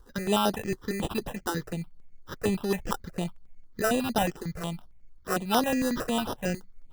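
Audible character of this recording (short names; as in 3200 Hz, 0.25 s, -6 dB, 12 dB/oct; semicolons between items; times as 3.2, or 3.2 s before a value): aliases and images of a low sample rate 2200 Hz, jitter 0%; notches that jump at a steady rate 11 Hz 640–7600 Hz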